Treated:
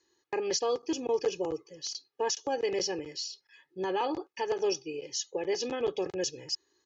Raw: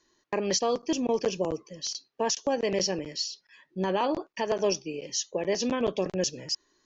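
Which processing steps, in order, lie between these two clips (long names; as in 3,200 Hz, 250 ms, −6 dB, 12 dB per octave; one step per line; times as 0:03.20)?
high-pass filter 81 Hz
comb filter 2.4 ms, depth 76%
level −5.5 dB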